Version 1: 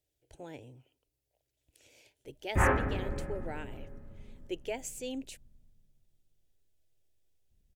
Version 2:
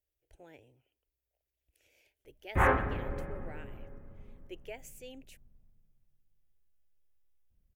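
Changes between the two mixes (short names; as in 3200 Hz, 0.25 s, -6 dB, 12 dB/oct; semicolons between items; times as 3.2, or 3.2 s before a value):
speech: add ten-band EQ 125 Hz -12 dB, 250 Hz -10 dB, 500 Hz -4 dB, 1000 Hz -9 dB, 4000 Hz -9 dB, 8000 Hz -11 dB; reverb: off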